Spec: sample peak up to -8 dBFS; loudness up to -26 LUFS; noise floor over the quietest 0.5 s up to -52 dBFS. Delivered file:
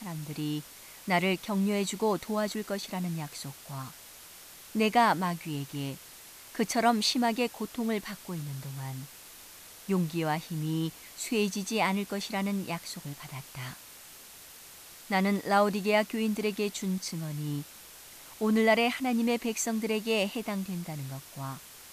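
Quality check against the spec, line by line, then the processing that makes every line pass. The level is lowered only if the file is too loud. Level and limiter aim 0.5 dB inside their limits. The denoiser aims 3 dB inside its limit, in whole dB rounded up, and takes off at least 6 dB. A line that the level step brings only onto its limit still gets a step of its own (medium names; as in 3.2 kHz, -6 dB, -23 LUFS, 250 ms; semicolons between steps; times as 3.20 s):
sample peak -12.5 dBFS: pass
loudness -30.5 LUFS: pass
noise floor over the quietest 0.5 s -50 dBFS: fail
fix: noise reduction 6 dB, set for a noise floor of -50 dBFS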